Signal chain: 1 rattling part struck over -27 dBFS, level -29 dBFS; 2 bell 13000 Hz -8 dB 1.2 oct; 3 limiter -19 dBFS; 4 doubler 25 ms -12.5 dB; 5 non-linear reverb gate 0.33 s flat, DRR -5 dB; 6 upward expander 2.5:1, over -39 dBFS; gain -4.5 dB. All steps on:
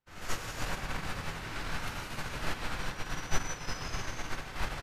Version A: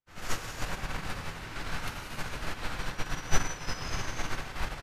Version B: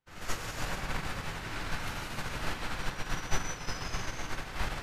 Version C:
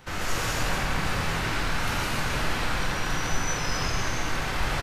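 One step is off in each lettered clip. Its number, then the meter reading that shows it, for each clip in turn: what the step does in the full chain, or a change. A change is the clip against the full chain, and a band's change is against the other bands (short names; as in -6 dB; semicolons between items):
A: 3, mean gain reduction 3.5 dB; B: 4, crest factor change -1.5 dB; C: 6, crest factor change -7.5 dB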